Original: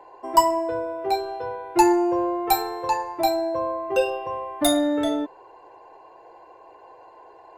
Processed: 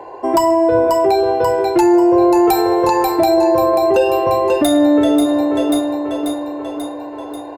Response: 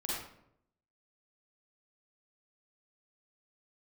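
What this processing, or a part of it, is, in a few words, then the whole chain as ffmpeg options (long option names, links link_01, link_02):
mastering chain: -af "highpass=43,equalizer=frequency=1000:width_type=o:width=0.96:gain=-3.5,aecho=1:1:538|1076|1614|2152|2690|3228|3766:0.299|0.173|0.1|0.0582|0.0338|0.0196|0.0114,acompressor=threshold=-24dB:ratio=2.5,tiltshelf=frequency=1100:gain=3.5,asoftclip=type=hard:threshold=-14.5dB,alimiter=level_in=19dB:limit=-1dB:release=50:level=0:latency=1,volume=-4.5dB"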